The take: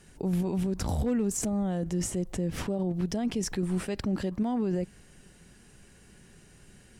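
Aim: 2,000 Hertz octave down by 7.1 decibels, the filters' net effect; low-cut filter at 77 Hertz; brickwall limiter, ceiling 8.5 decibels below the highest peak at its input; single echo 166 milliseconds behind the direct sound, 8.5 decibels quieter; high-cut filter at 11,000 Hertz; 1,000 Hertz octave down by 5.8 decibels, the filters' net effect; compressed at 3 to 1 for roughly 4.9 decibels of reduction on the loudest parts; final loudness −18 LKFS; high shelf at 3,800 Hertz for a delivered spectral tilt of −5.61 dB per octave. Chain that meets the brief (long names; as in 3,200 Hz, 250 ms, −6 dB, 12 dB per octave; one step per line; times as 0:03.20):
high-pass filter 77 Hz
low-pass filter 11,000 Hz
parametric band 1,000 Hz −7.5 dB
parametric band 2,000 Hz −4.5 dB
high-shelf EQ 3,800 Hz −8 dB
downward compressor 3 to 1, threshold −32 dBFS
brickwall limiter −31.5 dBFS
single-tap delay 166 ms −8.5 dB
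level +20.5 dB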